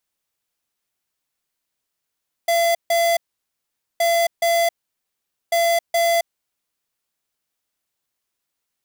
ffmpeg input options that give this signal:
-f lavfi -i "aevalsrc='0.133*(2*lt(mod(678*t,1),0.5)-1)*clip(min(mod(mod(t,1.52),0.42),0.27-mod(mod(t,1.52),0.42))/0.005,0,1)*lt(mod(t,1.52),0.84)':d=4.56:s=44100"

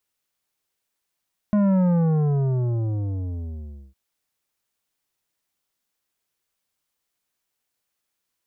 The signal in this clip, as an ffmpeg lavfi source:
-f lavfi -i "aevalsrc='0.141*clip((2.41-t)/2.15,0,1)*tanh(3.35*sin(2*PI*210*2.41/log(65/210)*(exp(log(65/210)*t/2.41)-1)))/tanh(3.35)':d=2.41:s=44100"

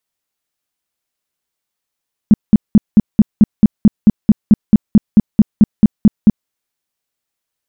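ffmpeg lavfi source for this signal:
-f lavfi -i "aevalsrc='0.841*sin(2*PI*212*mod(t,0.22))*lt(mod(t,0.22),6/212)':d=4.18:s=44100"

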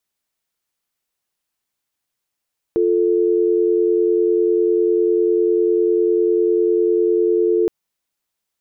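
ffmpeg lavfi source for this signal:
-f lavfi -i "aevalsrc='0.158*(sin(2*PI*350*t)+sin(2*PI*440*t))':d=4.92:s=44100"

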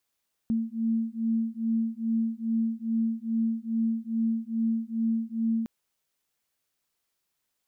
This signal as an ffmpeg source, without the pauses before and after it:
-f lavfi -i "aevalsrc='0.0398*(sin(2*PI*225*t)+sin(2*PI*227.4*t))':d=5.16:s=44100"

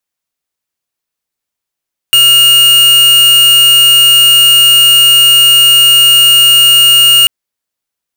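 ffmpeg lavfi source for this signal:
-f lavfi -i "aevalsrc='0.562*(2*lt(mod(2850*t,1),0.5)-1)':d=5.14:s=44100"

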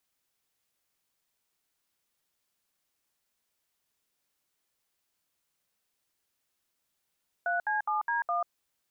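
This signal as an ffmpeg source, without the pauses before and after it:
-f lavfi -i "aevalsrc='0.0355*clip(min(mod(t,0.207),0.14-mod(t,0.207))/0.002,0,1)*(eq(floor(t/0.207),0)*(sin(2*PI*697*mod(t,0.207))+sin(2*PI*1477*mod(t,0.207)))+eq(floor(t/0.207),1)*(sin(2*PI*852*mod(t,0.207))+sin(2*PI*1633*mod(t,0.207)))+eq(floor(t/0.207),2)*(sin(2*PI*852*mod(t,0.207))+sin(2*PI*1209*mod(t,0.207)))+eq(floor(t/0.207),3)*(sin(2*PI*941*mod(t,0.207))+sin(2*PI*1633*mod(t,0.207)))+eq(floor(t/0.207),4)*(sin(2*PI*697*mod(t,0.207))+sin(2*PI*1209*mod(t,0.207))))':d=1.035:s=44100"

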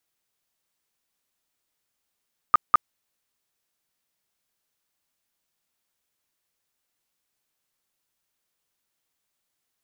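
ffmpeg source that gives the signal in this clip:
-f lavfi -i "aevalsrc='0.316*sin(2*PI*1220*mod(t,0.2))*lt(mod(t,0.2),20/1220)':d=0.4:s=44100"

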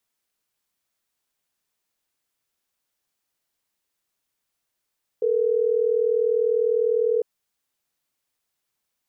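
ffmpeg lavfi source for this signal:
-f lavfi -i "aevalsrc='0.0891*(sin(2*PI*440*t)+sin(2*PI*480*t))*clip(min(mod(t,6),2-mod(t,6))/0.005,0,1)':d=3.12:s=44100"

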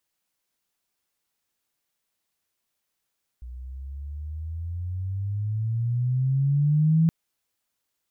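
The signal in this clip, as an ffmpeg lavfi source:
-f lavfi -i "aevalsrc='pow(10,(-15.5+20*(t/3.67-1))/20)*sin(2*PI*60.1*3.67/(17.5*log(2)/12)*(exp(17.5*log(2)/12*t/3.67)-1))':d=3.67:s=44100"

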